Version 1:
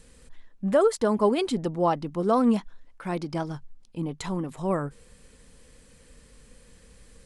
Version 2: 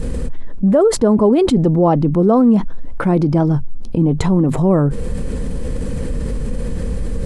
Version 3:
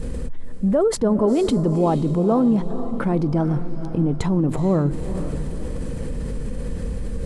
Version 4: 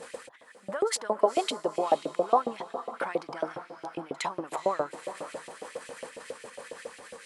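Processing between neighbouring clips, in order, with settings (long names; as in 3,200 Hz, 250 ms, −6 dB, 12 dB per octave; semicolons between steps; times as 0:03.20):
tilt shelving filter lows +10 dB; envelope flattener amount 70%
feedback delay with all-pass diffusion 474 ms, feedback 43%, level −11 dB; level −6 dB
backwards echo 61 ms −24 dB; auto-filter high-pass saw up 7.3 Hz 530–2,900 Hz; level −2 dB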